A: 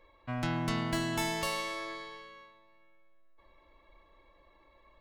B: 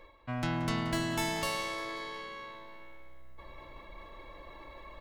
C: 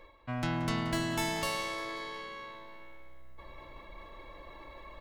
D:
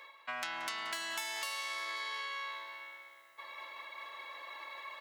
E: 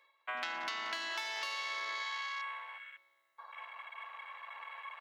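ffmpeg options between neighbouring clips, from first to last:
ffmpeg -i in.wav -filter_complex "[0:a]areverse,acompressor=mode=upward:threshold=-35dB:ratio=2.5,areverse,asplit=6[link_01][link_02][link_03][link_04][link_05][link_06];[link_02]adelay=178,afreqshift=-64,volume=-16.5dB[link_07];[link_03]adelay=356,afreqshift=-128,volume=-22dB[link_08];[link_04]adelay=534,afreqshift=-192,volume=-27.5dB[link_09];[link_05]adelay=712,afreqshift=-256,volume=-33dB[link_10];[link_06]adelay=890,afreqshift=-320,volume=-38.6dB[link_11];[link_01][link_07][link_08][link_09][link_10][link_11]amix=inputs=6:normalize=0" out.wav
ffmpeg -i in.wav -af anull out.wav
ffmpeg -i in.wav -af "highpass=1200,acompressor=threshold=-44dB:ratio=12,volume=8.5dB" out.wav
ffmpeg -i in.wav -af "afwtdn=0.00562,volume=1dB" out.wav

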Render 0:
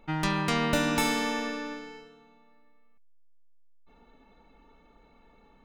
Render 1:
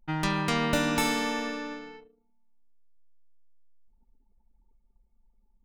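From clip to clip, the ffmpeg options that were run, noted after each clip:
ffmpeg -i in.wav -af "anlmdn=0.0251" out.wav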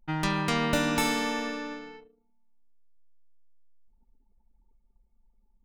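ffmpeg -i in.wav -af anull out.wav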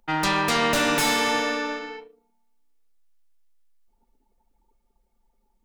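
ffmpeg -i in.wav -filter_complex "[0:a]acrossover=split=310[link_01][link_02];[link_02]aeval=exprs='0.2*sin(PI/2*3.55*val(0)/0.2)':channel_layout=same[link_03];[link_01][link_03]amix=inputs=2:normalize=0,flanger=delay=4.2:depth=8:regen=-80:speed=0.41:shape=triangular" out.wav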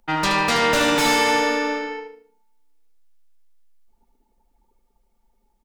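ffmpeg -i in.wav -filter_complex "[0:a]acrossover=split=7000[link_01][link_02];[link_02]asoftclip=type=tanh:threshold=-34dB[link_03];[link_01][link_03]amix=inputs=2:normalize=0,aecho=1:1:75|150|225|300:0.447|0.13|0.0376|0.0109,volume=2.5dB" out.wav

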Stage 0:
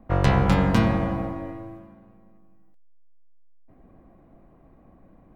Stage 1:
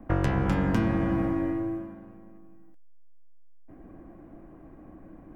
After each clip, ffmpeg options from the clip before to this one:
ffmpeg -i in.wav -filter_complex "[0:a]equalizer=frequency=315:width_type=o:width=0.33:gain=10,equalizer=frequency=1600:width_type=o:width=0.33:gain=5,equalizer=frequency=4000:width_type=o:width=0.33:gain=-7,acrossover=split=350|1200[link_01][link_02][link_03];[link_01]acompressor=threshold=-27dB:ratio=4[link_04];[link_02]acompressor=threshold=-38dB:ratio=4[link_05];[link_03]acompressor=threshold=-43dB:ratio=4[link_06];[link_04][link_05][link_06]amix=inputs=3:normalize=0,volume=3dB" out.wav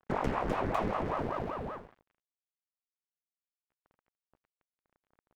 ffmpeg -i in.wav -af "aeval=exprs='sgn(val(0))*max(abs(val(0))-0.0106,0)':channel_layout=same,aeval=exprs='val(0)*sin(2*PI*520*n/s+520*0.85/5.2*sin(2*PI*5.2*n/s))':channel_layout=same,volume=-3dB" out.wav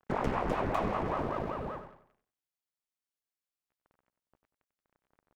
ffmpeg -i in.wav -filter_complex "[0:a]asplit=2[link_01][link_02];[link_02]adelay=94,lowpass=frequency=3400:poles=1,volume=-9.5dB,asplit=2[link_03][link_04];[link_04]adelay=94,lowpass=frequency=3400:poles=1,volume=0.37,asplit=2[link_05][link_06];[link_06]adelay=94,lowpass=frequency=3400:poles=1,volume=0.37,asplit=2[link_07][link_08];[link_08]adelay=94,lowpass=frequency=3400:poles=1,volume=0.37[link_09];[link_01][link_03][link_05][link_07][link_09]amix=inputs=5:normalize=0" out.wav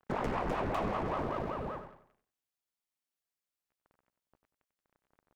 ffmpeg -i in.wav -af "asoftclip=type=tanh:threshold=-24.5dB" out.wav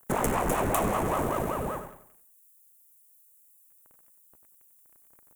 ffmpeg -i in.wav -af "aexciter=amount=14.9:drive=6:freq=7100,volume=6.5dB" out.wav

